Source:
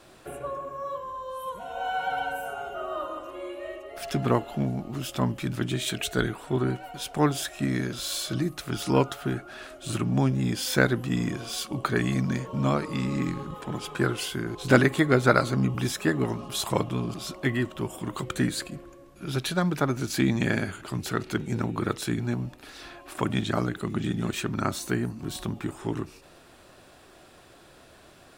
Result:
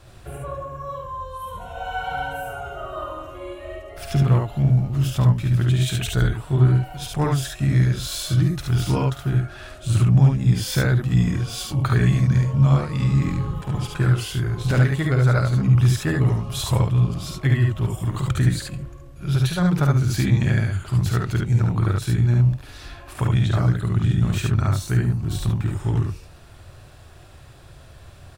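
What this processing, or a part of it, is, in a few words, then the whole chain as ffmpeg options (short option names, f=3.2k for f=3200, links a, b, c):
car stereo with a boomy subwoofer: -af "lowshelf=f=160:t=q:w=1.5:g=14,alimiter=limit=-10dB:level=0:latency=1:release=499,aecho=1:1:50|72:0.447|0.708"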